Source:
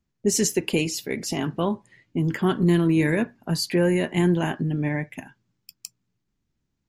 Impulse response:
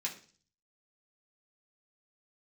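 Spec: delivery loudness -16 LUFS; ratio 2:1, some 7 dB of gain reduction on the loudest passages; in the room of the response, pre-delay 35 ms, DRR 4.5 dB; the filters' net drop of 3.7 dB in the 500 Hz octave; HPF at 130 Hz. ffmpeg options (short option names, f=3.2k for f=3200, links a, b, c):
-filter_complex "[0:a]highpass=130,equalizer=f=500:t=o:g=-5.5,acompressor=threshold=-31dB:ratio=2,asplit=2[a][b];[1:a]atrim=start_sample=2205,adelay=35[c];[b][c]afir=irnorm=-1:irlink=0,volume=-6dB[d];[a][d]amix=inputs=2:normalize=0,volume=14dB"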